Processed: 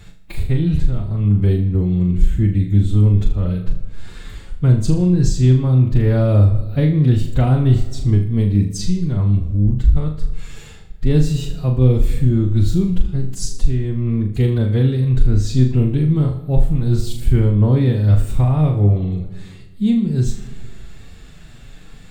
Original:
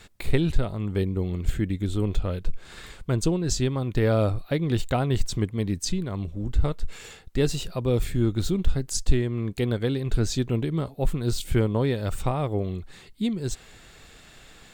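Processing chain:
bass and treble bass +14 dB, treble −1 dB
downward compressor 3 to 1, threshold −10 dBFS, peak gain reduction 9.5 dB
phase-vocoder stretch with locked phases 1.5×
tape wow and flutter 19 cents
flutter between parallel walls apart 6.7 metres, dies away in 0.41 s
convolution reverb RT60 1.6 s, pre-delay 100 ms, DRR 17 dB

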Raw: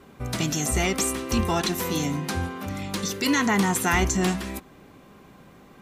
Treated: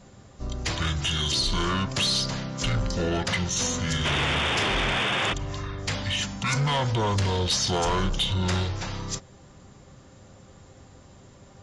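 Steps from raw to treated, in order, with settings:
high-shelf EQ 7,600 Hz +10 dB
sound drawn into the spectrogram noise, 0:02.02–0:02.67, 200–7,400 Hz −23 dBFS
soft clipping −19.5 dBFS, distortion −13 dB
wrong playback speed 15 ips tape played at 7.5 ips

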